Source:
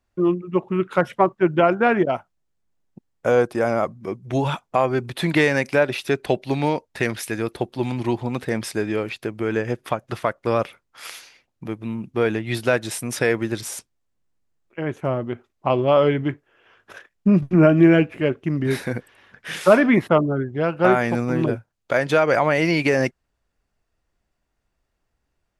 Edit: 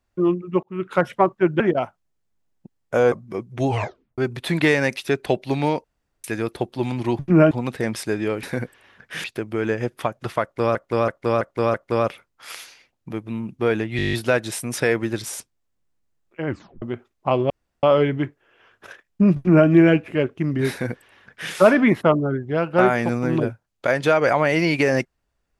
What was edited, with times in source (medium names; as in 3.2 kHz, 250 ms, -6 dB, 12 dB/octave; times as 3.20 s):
0.63–0.93 s: fade in
1.60–1.92 s: delete
3.44–3.85 s: delete
4.40 s: tape stop 0.51 s
5.70–5.97 s: delete
6.84–7.24 s: room tone
10.29–10.62 s: loop, 5 plays
12.52 s: stutter 0.02 s, 9 plays
14.86 s: tape stop 0.35 s
15.89 s: insert room tone 0.33 s
17.42–17.74 s: copy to 8.19 s
18.77–19.58 s: copy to 9.11 s